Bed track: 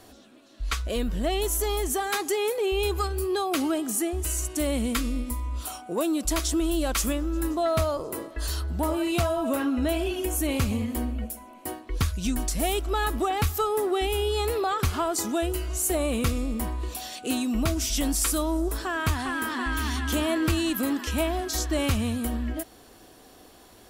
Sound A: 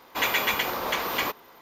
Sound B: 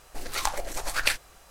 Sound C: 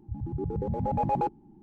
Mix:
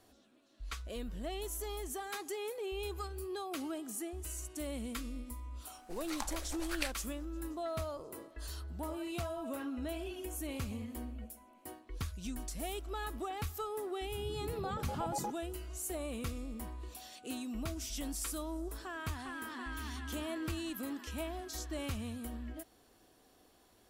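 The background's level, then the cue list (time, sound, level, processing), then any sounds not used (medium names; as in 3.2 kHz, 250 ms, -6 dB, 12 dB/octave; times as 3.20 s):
bed track -14 dB
5.75 s: add B -13 dB
14.03 s: add C -12 dB
not used: A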